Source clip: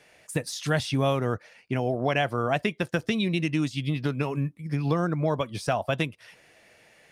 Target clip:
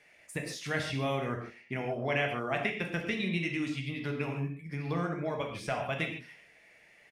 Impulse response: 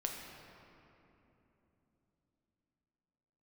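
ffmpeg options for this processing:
-filter_complex "[0:a]equalizer=f=2100:t=o:w=0.54:g=10,asplit=2[s0][s1];[s1]adelay=62,lowpass=f=1200:p=1,volume=0.133,asplit=2[s2][s3];[s3]adelay=62,lowpass=f=1200:p=1,volume=0.48,asplit=2[s4][s5];[s5]adelay=62,lowpass=f=1200:p=1,volume=0.48,asplit=2[s6][s7];[s7]adelay=62,lowpass=f=1200:p=1,volume=0.48[s8];[s0][s2][s4][s6][s8]amix=inputs=5:normalize=0[s9];[1:a]atrim=start_sample=2205,afade=t=out:st=0.27:d=0.01,atrim=end_sample=12348,asetrate=61740,aresample=44100[s10];[s9][s10]afir=irnorm=-1:irlink=0,volume=0.562"

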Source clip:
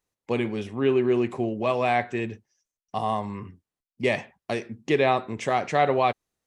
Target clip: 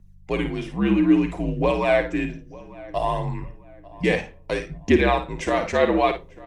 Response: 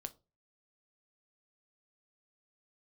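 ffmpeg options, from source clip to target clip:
-filter_complex "[0:a]aphaser=in_gain=1:out_gain=1:delay=3.9:decay=0.44:speed=0.61:type=triangular,asplit=2[s0][s1];[s1]adelay=895,lowpass=f=2200:p=1,volume=0.0944,asplit=2[s2][s3];[s3]adelay=895,lowpass=f=2200:p=1,volume=0.37,asplit=2[s4][s5];[s5]adelay=895,lowpass=f=2200:p=1,volume=0.37[s6];[s0][s2][s4][s6]amix=inputs=4:normalize=0,aeval=exprs='val(0)+0.00398*(sin(2*PI*50*n/s)+sin(2*PI*2*50*n/s)/2+sin(2*PI*3*50*n/s)/3+sin(2*PI*4*50*n/s)/4+sin(2*PI*5*50*n/s)/5)':c=same,asplit=2[s7][s8];[1:a]atrim=start_sample=2205,asetrate=41013,aresample=44100,adelay=53[s9];[s8][s9]afir=irnorm=-1:irlink=0,volume=0.596[s10];[s7][s10]amix=inputs=2:normalize=0,afreqshift=-67,volume=1.19"

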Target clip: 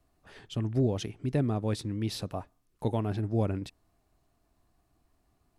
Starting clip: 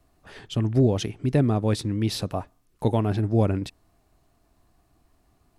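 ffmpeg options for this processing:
-af "volume=0.447"

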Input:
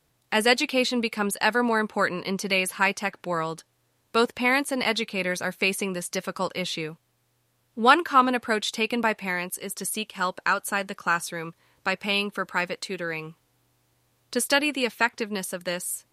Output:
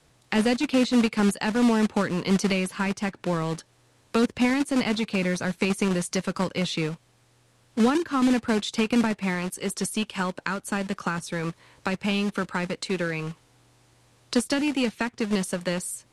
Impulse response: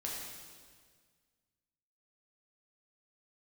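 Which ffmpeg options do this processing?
-filter_complex "[0:a]acrossover=split=310[s0][s1];[s0]acrusher=bits=2:mode=log:mix=0:aa=0.000001[s2];[s1]acompressor=threshold=0.0141:ratio=6[s3];[s2][s3]amix=inputs=2:normalize=0,lowpass=f=10000:w=0.5412,lowpass=f=10000:w=1.3066,volume=2.66"

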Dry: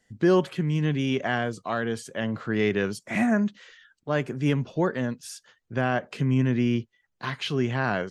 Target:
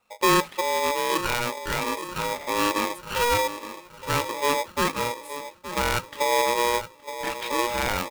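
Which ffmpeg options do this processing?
-filter_complex "[0:a]asuperstop=centerf=5400:order=4:qfactor=0.92,asplit=2[s0][s1];[s1]adelay=870,lowpass=f=850:p=1,volume=0.266,asplit=2[s2][s3];[s3]adelay=870,lowpass=f=850:p=1,volume=0.53,asplit=2[s4][s5];[s5]adelay=870,lowpass=f=850:p=1,volume=0.53,asplit=2[s6][s7];[s7]adelay=870,lowpass=f=850:p=1,volume=0.53,asplit=2[s8][s9];[s9]adelay=870,lowpass=f=850:p=1,volume=0.53,asplit=2[s10][s11];[s11]adelay=870,lowpass=f=850:p=1,volume=0.53[s12];[s2][s4][s6][s8][s10][s12]amix=inputs=6:normalize=0[s13];[s0][s13]amix=inputs=2:normalize=0,aeval=exprs='val(0)*sgn(sin(2*PI*720*n/s))':c=same"

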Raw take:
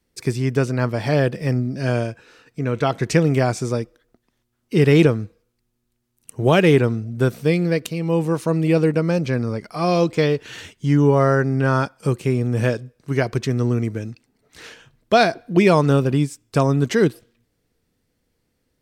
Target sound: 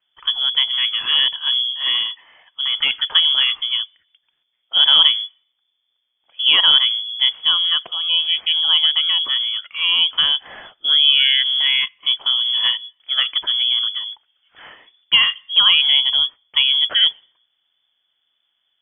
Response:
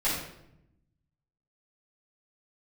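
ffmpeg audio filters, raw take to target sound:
-filter_complex "[0:a]acrossover=split=130|880[s0][s1][s2];[s2]asoftclip=type=tanh:threshold=0.158[s3];[s0][s1][s3]amix=inputs=3:normalize=0,lowpass=f=3000:t=q:w=0.5098,lowpass=f=3000:t=q:w=0.6013,lowpass=f=3000:t=q:w=0.9,lowpass=f=3000:t=q:w=2.563,afreqshift=-3500,volume=1.12"

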